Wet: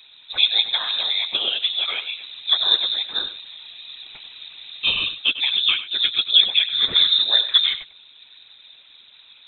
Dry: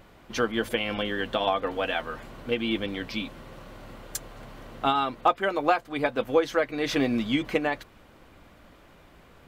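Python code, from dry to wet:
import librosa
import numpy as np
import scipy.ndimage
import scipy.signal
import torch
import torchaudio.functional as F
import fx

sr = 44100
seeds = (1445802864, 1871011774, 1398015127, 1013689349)

y = fx.spec_quant(x, sr, step_db=15)
y = fx.peak_eq(y, sr, hz=460.0, db=6.0, octaves=0.27)
y = fx.small_body(y, sr, hz=(210.0, 320.0, 1400.0), ring_ms=25, db=10)
y = fx.whisperise(y, sr, seeds[0])
y = y + 10.0 ** (-13.0 / 20.0) * np.pad(y, (int(98 * sr / 1000.0), 0))[:len(y)]
y = fx.freq_invert(y, sr, carrier_hz=3900)
y = F.gain(torch.from_numpy(y), -1.0).numpy()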